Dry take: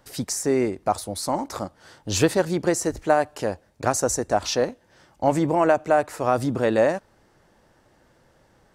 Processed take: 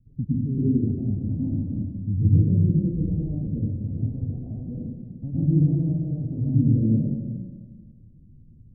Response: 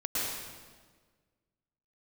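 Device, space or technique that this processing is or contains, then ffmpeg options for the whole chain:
club heard from the street: -filter_complex "[0:a]asettb=1/sr,asplit=3[a][b][c];[a]atrim=end=3.994[d];[b]atrim=start=3.99:end=4.66,asetpts=PTS-STARTPTS,afade=t=in:d=0.004:c=qsin,afade=t=out:st=0.666:d=0.004:c=qsin,lowshelf=f=610:t=q:w=1.5:g=-7.5[e];[c]atrim=start=4.656[f];[d][e]acrossfade=d=0.004:c1=hsin:c2=qsin[g];[g][f]acrossfade=d=0.004:c1=qsin:c2=hsin,alimiter=limit=-13dB:level=0:latency=1:release=171,lowpass=f=190:w=0.5412,lowpass=f=190:w=1.3066[h];[1:a]atrim=start_sample=2205[i];[h][i]afir=irnorm=-1:irlink=0,volume=6.5dB"

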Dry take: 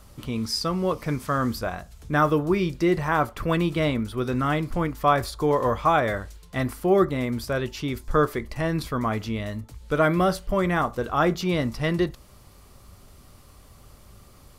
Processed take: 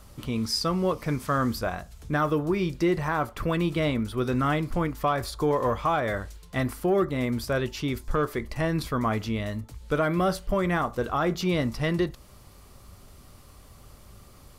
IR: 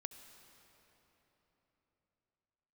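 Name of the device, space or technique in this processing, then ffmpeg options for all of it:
soft clipper into limiter: -af "asoftclip=type=tanh:threshold=-8.5dB,alimiter=limit=-16dB:level=0:latency=1:release=227"

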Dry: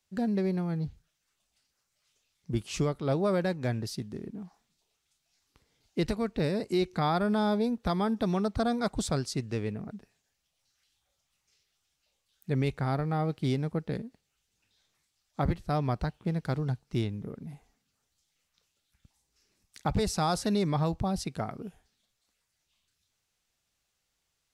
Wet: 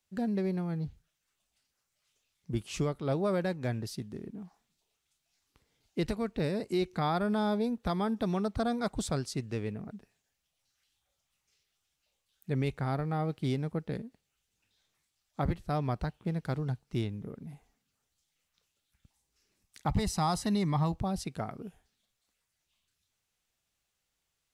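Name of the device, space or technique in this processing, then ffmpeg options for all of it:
exciter from parts: -filter_complex "[0:a]asettb=1/sr,asplit=3[a][b][c];[a]atrim=end=19.874[d];[b]atrim=start=19.87:end=20.92,asetpts=PTS-STARTPTS,afade=t=in:d=0.004:c=qsin,afade=t=out:st=1.046:d=0.004:c=qsin,aecho=1:1:1:0.48,atrim=end_sample=46305[e];[c]atrim=start=20.916[f];[d][e]acrossfade=d=0.004:c1=hsin:c2=qsin[g];[g][f]acrossfade=d=0.004:c1=qsin:c2=hsin,asplit=2[h][i];[i]highpass=4k,asoftclip=type=tanh:threshold=-30dB,highpass=f=3.1k:w=0.5412,highpass=f=3.1k:w=1.3066,volume=-12.5dB[j];[h][j]amix=inputs=2:normalize=0,volume=-2.5dB"

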